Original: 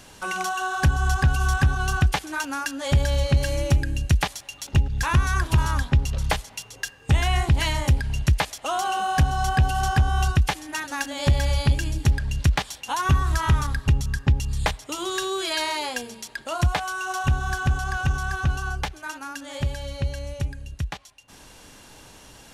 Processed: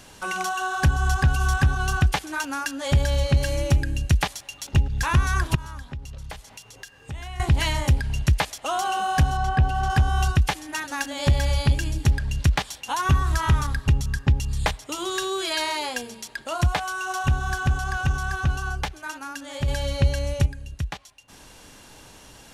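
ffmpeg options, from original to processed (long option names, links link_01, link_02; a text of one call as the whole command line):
ffmpeg -i in.wav -filter_complex "[0:a]asettb=1/sr,asplit=3[link_01][link_02][link_03];[link_01]atrim=end=5.554[link_04];[link_02]atrim=start=5.55:end=7.4,asetpts=PTS-STARTPTS,afade=type=in:duration=0.004:curve=qsin,afade=type=out:start_time=1.846:duration=0.004:curve=qsin,acompressor=threshold=-44dB:ratio=2:attack=3.2:release=140:knee=1:detection=peak[link_05];[link_03]atrim=start=7.396[link_06];[link_04][link_05]acrossfade=duration=0.004:curve1=hsin:curve2=qsin[link_07];[link_07][link_06]acrossfade=duration=0.004:curve1=qsin:curve2=hsin,asettb=1/sr,asplit=3[link_08][link_09][link_10];[link_08]atrim=end=9.374[link_11];[link_09]atrim=start=9.37:end=9.9,asetpts=PTS-STARTPTS,afade=type=in:duration=0.004:curve=qsin,afade=type=out:start_time=0.526:duration=0.004:curve=qsin,lowpass=frequency=2000:poles=1[link_12];[link_10]atrim=start=9.896[link_13];[link_11][link_12]acrossfade=duration=0.004:curve1=hsin:curve2=qsin[link_14];[link_14][link_13]acrossfade=duration=0.004:curve1=qsin:curve2=hsin,asplit=3[link_15][link_16][link_17];[link_15]atrim=end=19.682[link_18];[link_16]atrim=start=19.678:end=20.462,asetpts=PTS-STARTPTS,volume=6.5dB[link_19];[link_17]atrim=start=20.458[link_20];[link_18][link_19]acrossfade=duration=0.004:curve1=hsin:curve2=hsin[link_21];[link_21][link_20]acrossfade=duration=0.004:curve1=hsin:curve2=hsin" out.wav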